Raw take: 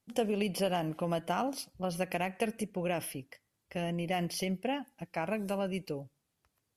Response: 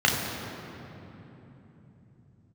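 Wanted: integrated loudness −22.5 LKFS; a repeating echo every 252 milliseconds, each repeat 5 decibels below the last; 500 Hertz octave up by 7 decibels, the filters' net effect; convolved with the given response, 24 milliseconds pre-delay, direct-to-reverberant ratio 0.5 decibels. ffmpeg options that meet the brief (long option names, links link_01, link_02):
-filter_complex "[0:a]equalizer=frequency=500:width_type=o:gain=8.5,aecho=1:1:252|504|756|1008|1260|1512|1764:0.562|0.315|0.176|0.0988|0.0553|0.031|0.0173,asplit=2[link_01][link_02];[1:a]atrim=start_sample=2205,adelay=24[link_03];[link_02][link_03]afir=irnorm=-1:irlink=0,volume=-18dB[link_04];[link_01][link_04]amix=inputs=2:normalize=0,volume=3.5dB"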